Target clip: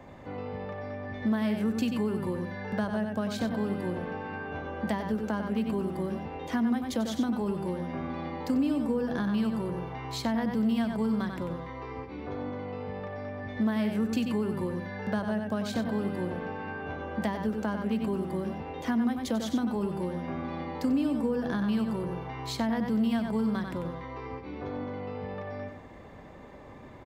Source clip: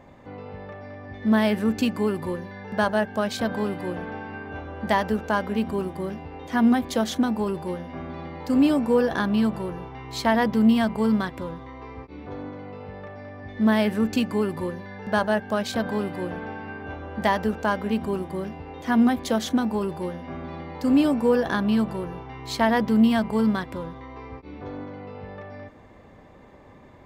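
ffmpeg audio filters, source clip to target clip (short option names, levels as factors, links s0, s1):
-filter_complex "[0:a]asplit=2[s0][s1];[s1]adelay=93.29,volume=0.447,highshelf=f=4000:g=-2.1[s2];[s0][s2]amix=inputs=2:normalize=0,acrossover=split=100|290[s3][s4][s5];[s3]acompressor=threshold=0.00224:ratio=4[s6];[s4]acompressor=threshold=0.0316:ratio=4[s7];[s5]acompressor=threshold=0.0158:ratio=4[s8];[s6][s7][s8]amix=inputs=3:normalize=0,volume=1.12"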